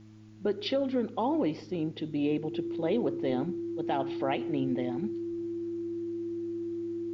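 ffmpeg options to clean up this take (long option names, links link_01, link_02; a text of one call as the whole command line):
ffmpeg -i in.wav -af "bandreject=frequency=107.6:width_type=h:width=4,bandreject=frequency=215.2:width_type=h:width=4,bandreject=frequency=322.8:width_type=h:width=4,bandreject=frequency=340:width=30,agate=range=-21dB:threshold=-34dB" out.wav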